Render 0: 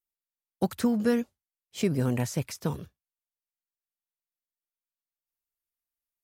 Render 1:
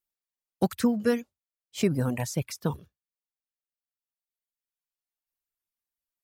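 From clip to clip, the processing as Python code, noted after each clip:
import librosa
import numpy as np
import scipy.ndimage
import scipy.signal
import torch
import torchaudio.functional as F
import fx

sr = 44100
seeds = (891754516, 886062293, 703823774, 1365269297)

y = fx.dereverb_blind(x, sr, rt60_s=1.8)
y = y * librosa.db_to_amplitude(2.0)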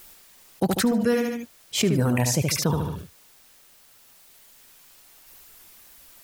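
y = np.clip(x, -10.0 ** (-15.0 / 20.0), 10.0 ** (-15.0 / 20.0))
y = fx.echo_feedback(y, sr, ms=73, feedback_pct=26, wet_db=-9)
y = fx.env_flatten(y, sr, amount_pct=70)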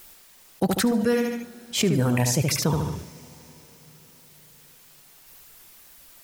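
y = fx.rev_plate(x, sr, seeds[0], rt60_s=4.7, hf_ratio=1.0, predelay_ms=0, drr_db=17.5)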